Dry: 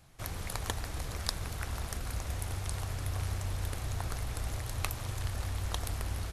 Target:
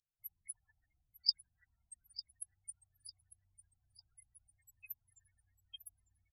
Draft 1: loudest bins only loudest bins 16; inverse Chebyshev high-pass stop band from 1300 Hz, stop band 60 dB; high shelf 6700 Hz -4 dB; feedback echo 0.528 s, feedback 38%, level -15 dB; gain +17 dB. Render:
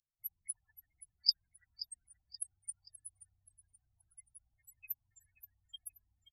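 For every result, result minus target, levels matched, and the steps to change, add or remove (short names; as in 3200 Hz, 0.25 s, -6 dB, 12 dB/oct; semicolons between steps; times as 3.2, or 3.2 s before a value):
echo 0.372 s early; 8000 Hz band +3.0 dB
change: feedback echo 0.9 s, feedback 38%, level -15 dB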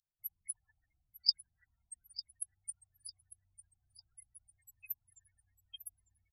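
8000 Hz band +3.0 dB
change: high shelf 6700 Hz -11.5 dB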